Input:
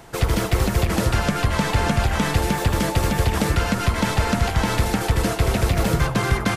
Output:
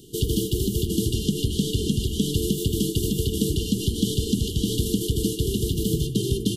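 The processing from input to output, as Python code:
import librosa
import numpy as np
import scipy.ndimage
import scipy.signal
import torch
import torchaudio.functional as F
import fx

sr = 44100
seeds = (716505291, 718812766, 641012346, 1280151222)

y = fx.brickwall_bandstop(x, sr, low_hz=460.0, high_hz=2800.0)
y = fx.peak_eq(y, sr, hz=5300.0, db=-5.0, octaves=1.1)
y = fx.rider(y, sr, range_db=10, speed_s=0.5)
y = fx.low_shelf(y, sr, hz=120.0, db=-11.5)
y = y * librosa.db_to_amplitude(2.5)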